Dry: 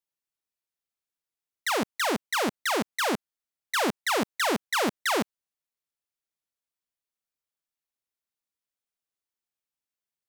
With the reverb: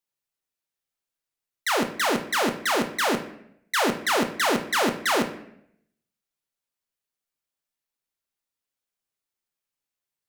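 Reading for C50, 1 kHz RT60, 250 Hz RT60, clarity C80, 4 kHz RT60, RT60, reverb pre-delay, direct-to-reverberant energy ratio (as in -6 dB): 11.0 dB, 0.65 s, 0.85 s, 14.0 dB, 0.55 s, 0.75 s, 5 ms, 5.0 dB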